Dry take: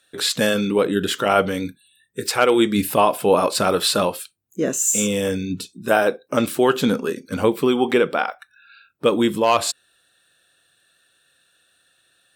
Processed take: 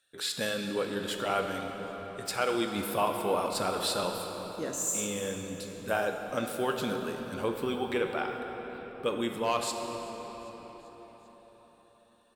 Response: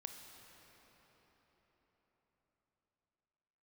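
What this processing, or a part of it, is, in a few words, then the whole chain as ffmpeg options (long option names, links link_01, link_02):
cathedral: -filter_complex "[0:a]asettb=1/sr,asplit=3[link_01][link_02][link_03];[link_01]atrim=end=1.584[link_04];[link_02]atrim=start=1.58:end=2.26,asetpts=PTS-STARTPTS,afade=type=in:duration=0.004:curve=qsin,afade=type=out:start_time=0.676:duration=0.004:curve=qsin,lowpass=8600[link_05];[link_03]atrim=start=2.256[link_06];[link_04][link_05]acrossfade=duration=0.004:curve1=hsin:curve2=qsin[link_07];[link_07][link_06]acrossfade=duration=0.004:curve1=qsin:curve2=hsin,equalizer=frequency=260:width_type=o:width=1.6:gain=-4[link_08];[1:a]atrim=start_sample=2205[link_09];[link_08][link_09]afir=irnorm=-1:irlink=0,asplit=5[link_10][link_11][link_12][link_13][link_14];[link_11]adelay=391,afreqshift=-93,volume=-23.5dB[link_15];[link_12]adelay=782,afreqshift=-186,volume=-27.7dB[link_16];[link_13]adelay=1173,afreqshift=-279,volume=-31.8dB[link_17];[link_14]adelay=1564,afreqshift=-372,volume=-36dB[link_18];[link_10][link_15][link_16][link_17][link_18]amix=inputs=5:normalize=0,volume=-6.5dB"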